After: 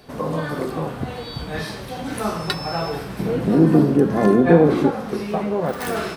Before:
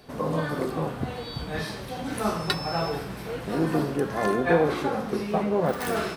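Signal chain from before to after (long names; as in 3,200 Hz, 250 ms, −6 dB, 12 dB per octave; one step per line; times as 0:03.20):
0:03.19–0:04.91: parametric band 220 Hz +14.5 dB 2.5 octaves
in parallel at 0 dB: downward compressor, threshold −24 dBFS, peak gain reduction 16.5 dB
on the sum: level −2.5 dB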